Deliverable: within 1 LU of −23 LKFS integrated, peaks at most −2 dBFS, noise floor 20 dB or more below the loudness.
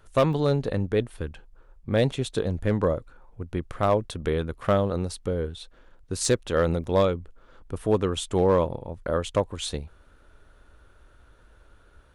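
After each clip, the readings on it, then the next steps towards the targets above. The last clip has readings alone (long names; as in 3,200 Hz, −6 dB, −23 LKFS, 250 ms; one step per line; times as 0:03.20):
share of clipped samples 0.3%; peaks flattened at −13.0 dBFS; number of dropouts 3; longest dropout 1.8 ms; integrated loudness −26.0 LKFS; sample peak −13.0 dBFS; target loudness −23.0 LKFS
→ clipped peaks rebuilt −13 dBFS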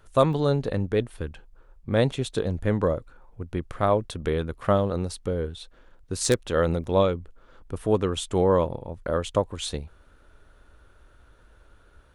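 share of clipped samples 0.0%; number of dropouts 3; longest dropout 1.8 ms
→ repair the gap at 0:00.33/0:02.12/0:06.84, 1.8 ms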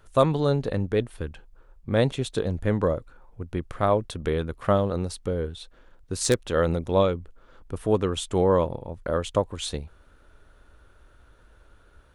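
number of dropouts 0; integrated loudness −26.0 LKFS; sample peak −4.0 dBFS; target loudness −23.0 LKFS
→ level +3 dB
brickwall limiter −2 dBFS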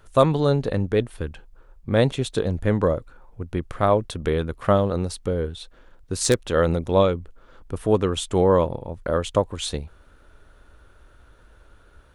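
integrated loudness −23.0 LKFS; sample peak −2.0 dBFS; background noise floor −53 dBFS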